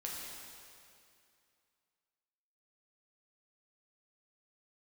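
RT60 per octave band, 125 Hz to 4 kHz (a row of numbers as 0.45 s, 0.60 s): 2.5 s, 2.5 s, 2.5 s, 2.5 s, 2.4 s, 2.3 s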